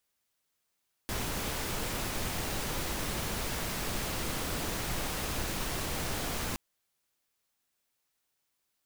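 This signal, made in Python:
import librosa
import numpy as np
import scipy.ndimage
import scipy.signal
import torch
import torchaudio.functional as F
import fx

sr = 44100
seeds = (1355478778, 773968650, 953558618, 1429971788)

y = fx.noise_colour(sr, seeds[0], length_s=5.47, colour='pink', level_db=-34.0)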